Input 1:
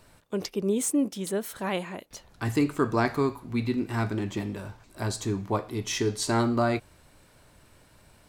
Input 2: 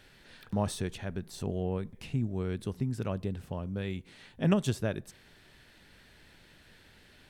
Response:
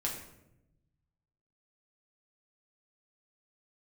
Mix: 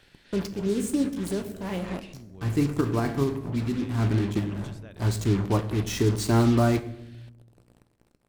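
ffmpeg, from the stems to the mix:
-filter_complex "[0:a]lowshelf=frequency=370:gain=11.5,aeval=exprs='val(0)+0.0112*(sin(2*PI*60*n/s)+sin(2*PI*2*60*n/s)/2+sin(2*PI*3*60*n/s)/3+sin(2*PI*4*60*n/s)/4+sin(2*PI*5*60*n/s)/5)':channel_layout=same,acrusher=bits=4:mix=0:aa=0.5,volume=-5dB,asplit=2[link_01][link_02];[link_02]volume=-10dB[link_03];[1:a]equalizer=frequency=3500:width=0.49:gain=6,acompressor=threshold=-41dB:ratio=3,volume=-5dB,asplit=2[link_04][link_05];[link_05]apad=whole_len=365206[link_06];[link_01][link_06]sidechaincompress=threshold=-52dB:ratio=8:attack=7.4:release=126[link_07];[2:a]atrim=start_sample=2205[link_08];[link_03][link_08]afir=irnorm=-1:irlink=0[link_09];[link_07][link_04][link_09]amix=inputs=3:normalize=0"

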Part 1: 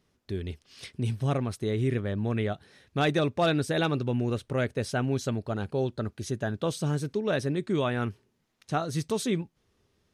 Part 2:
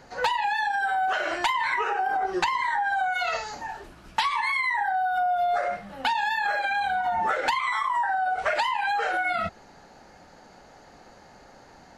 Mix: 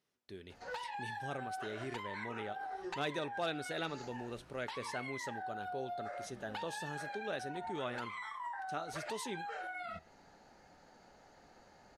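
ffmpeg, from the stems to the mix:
ffmpeg -i stem1.wav -i stem2.wav -filter_complex "[0:a]highpass=frequency=490:poles=1,volume=-5dB,asplit=2[link_01][link_02];[1:a]acompressor=threshold=-33dB:ratio=2.5,adelay=500,volume=-6dB[link_03];[link_02]apad=whole_len=550050[link_04];[link_03][link_04]sidechaincompress=threshold=-39dB:ratio=8:attack=34:release=124[link_05];[link_01][link_05]amix=inputs=2:normalize=0,bandreject=frequency=1100:width=21,flanger=delay=6.6:depth=5.9:regen=89:speed=0.65:shape=triangular" out.wav

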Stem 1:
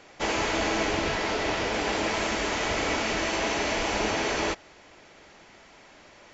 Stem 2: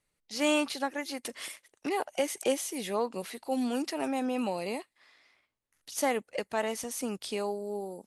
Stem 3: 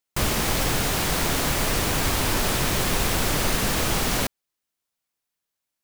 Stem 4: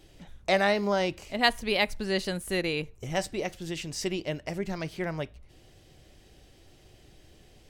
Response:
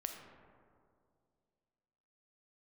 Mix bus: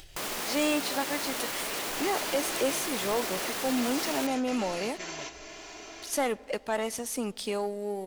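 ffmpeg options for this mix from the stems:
-filter_complex "[0:a]highpass=250,highshelf=frequency=3900:gain=11,aecho=1:1:2.9:0.98,adelay=1750,volume=-19.5dB,asplit=2[link_01][link_02];[link_02]volume=-5.5dB[link_03];[1:a]aeval=exprs='sgn(val(0))*max(abs(val(0))-0.00158,0)':channel_layout=same,adelay=150,volume=2.5dB,asplit=2[link_04][link_05];[link_05]volume=-18dB[link_06];[2:a]highpass=340,alimiter=limit=-23dB:level=0:latency=1,volume=-1.5dB[link_07];[3:a]equalizer=frequency=270:width=0.49:gain=-14,acompressor=threshold=-35dB:ratio=6,volume=-8dB,asplit=3[link_08][link_09][link_10];[link_09]volume=-6.5dB[link_11];[link_10]apad=whole_len=356857[link_12];[link_01][link_12]sidechaingate=range=-33dB:threshold=-52dB:ratio=16:detection=peak[link_13];[4:a]atrim=start_sample=2205[link_14];[link_03][link_06][link_11]amix=inputs=3:normalize=0[link_15];[link_15][link_14]afir=irnorm=-1:irlink=0[link_16];[link_13][link_04][link_07][link_08][link_16]amix=inputs=5:normalize=0,asoftclip=type=tanh:threshold=-20.5dB,acompressor=mode=upward:threshold=-38dB:ratio=2.5"

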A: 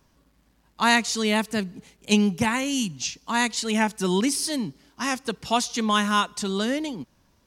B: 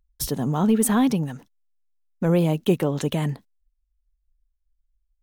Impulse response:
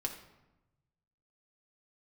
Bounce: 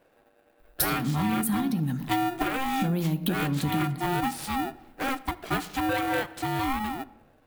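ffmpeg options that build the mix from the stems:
-filter_complex "[0:a]lowpass=8300,aeval=exprs='val(0)*sgn(sin(2*PI*530*n/s))':channel_layout=same,volume=-1.5dB,asplit=3[link_01][link_02][link_03];[link_02]volume=-11dB[link_04];[1:a]equalizer=frequency=125:width_type=o:width=1:gain=6,equalizer=frequency=250:width_type=o:width=1:gain=9,equalizer=frequency=500:width_type=o:width=1:gain=-9,equalizer=frequency=1000:width_type=o:width=1:gain=3,equalizer=frequency=2000:width_type=o:width=1:gain=5,equalizer=frequency=4000:width_type=o:width=1:gain=11,equalizer=frequency=8000:width_type=o:width=1:gain=-4,acompressor=threshold=-30dB:ratio=2.5,aexciter=amount=4.4:drive=5.3:freq=4100,adelay=600,volume=2.5dB,asplit=2[link_05][link_06];[link_06]volume=-3dB[link_07];[link_03]apad=whole_len=257007[link_08];[link_05][link_08]sidechaincompress=threshold=-27dB:ratio=8:attack=16:release=559[link_09];[2:a]atrim=start_sample=2205[link_10];[link_04][link_07]amix=inputs=2:normalize=0[link_11];[link_11][link_10]afir=irnorm=-1:irlink=0[link_12];[link_01][link_09][link_12]amix=inputs=3:normalize=0,equalizer=frequency=5800:width=0.9:gain=-15,acompressor=threshold=-24dB:ratio=4"

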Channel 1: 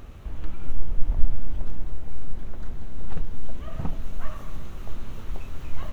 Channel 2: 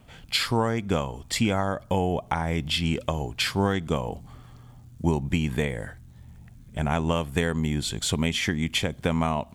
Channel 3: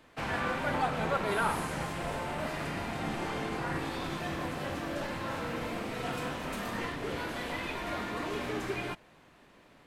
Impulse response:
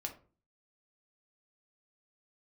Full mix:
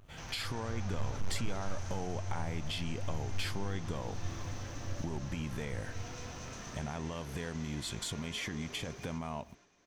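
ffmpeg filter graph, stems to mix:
-filter_complex "[0:a]tremolo=f=96:d=0.947,volume=-13.5dB,asplit=2[link_01][link_02];[link_02]volume=-6dB[link_03];[1:a]alimiter=limit=-19dB:level=0:latency=1,volume=-2dB,asplit=2[link_04][link_05];[2:a]asoftclip=type=tanh:threshold=-34dB,lowpass=frequency=6100:width_type=q:width=9.9,volume=-10.5dB,asplit=2[link_06][link_07];[link_07]volume=-4dB[link_08];[link_05]apad=whole_len=261307[link_09];[link_01][link_09]sidechaincompress=threshold=-34dB:ratio=8:attack=16:release=312[link_10];[link_04][link_06]amix=inputs=2:normalize=0,agate=range=-33dB:threshold=-47dB:ratio=3:detection=peak,acompressor=threshold=-38dB:ratio=3,volume=0dB[link_11];[link_03][link_08]amix=inputs=2:normalize=0,aecho=0:1:237|474|711|948|1185|1422:1|0.43|0.185|0.0795|0.0342|0.0147[link_12];[link_10][link_11][link_12]amix=inputs=3:normalize=0,volume=25.5dB,asoftclip=hard,volume=-25.5dB"

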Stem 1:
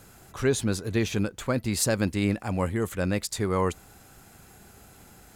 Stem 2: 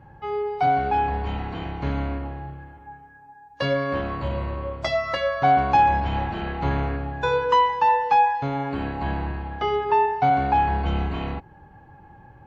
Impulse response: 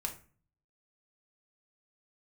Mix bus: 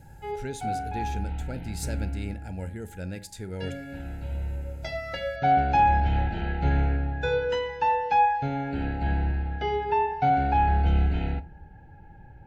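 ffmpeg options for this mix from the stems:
-filter_complex "[0:a]volume=-14dB,asplit=3[link_01][link_02][link_03];[link_02]volume=-6dB[link_04];[1:a]volume=-6dB,asplit=2[link_05][link_06];[link_06]volume=-7.5dB[link_07];[link_03]apad=whole_len=549610[link_08];[link_05][link_08]sidechaincompress=threshold=-59dB:ratio=8:attack=16:release=1080[link_09];[2:a]atrim=start_sample=2205[link_10];[link_04][link_07]amix=inputs=2:normalize=0[link_11];[link_11][link_10]afir=irnorm=-1:irlink=0[link_12];[link_01][link_09][link_12]amix=inputs=3:normalize=0,asuperstop=centerf=1100:order=8:qfactor=2.6,lowshelf=frequency=73:gain=11.5"

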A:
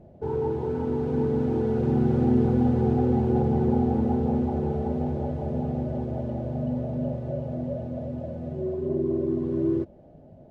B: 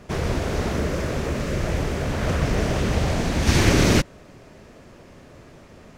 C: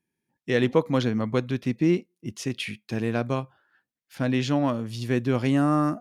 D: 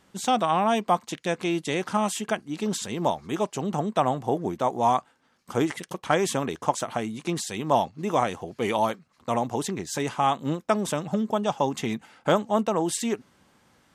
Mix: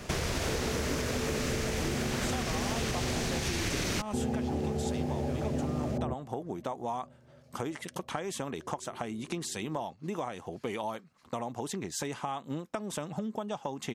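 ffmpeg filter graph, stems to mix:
ffmpeg -i stem1.wav -i stem2.wav -i stem3.wav -i stem4.wav -filter_complex "[0:a]lowpass=1300,volume=0.5dB[link_01];[1:a]highshelf=frequency=2200:gain=10,volume=1dB[link_02];[2:a]volume=-7.5dB,asplit=2[link_03][link_04];[3:a]adelay=2050,volume=0dB[link_05];[link_04]apad=whole_len=463374[link_06];[link_01][link_06]sidechaingate=range=-28dB:threshold=-58dB:ratio=16:detection=peak[link_07];[link_03][link_05]amix=inputs=2:normalize=0,acompressor=threshold=-32dB:ratio=6,volume=0dB[link_08];[link_07][link_02]amix=inputs=2:normalize=0,acrossover=split=630|3100[link_09][link_10][link_11];[link_09]acompressor=threshold=-23dB:ratio=4[link_12];[link_10]acompressor=threshold=-29dB:ratio=4[link_13];[link_11]acompressor=threshold=-29dB:ratio=4[link_14];[link_12][link_13][link_14]amix=inputs=3:normalize=0,alimiter=limit=-16dB:level=0:latency=1:release=360,volume=0dB[link_15];[link_08][link_15]amix=inputs=2:normalize=0,acompressor=threshold=-28dB:ratio=6" out.wav

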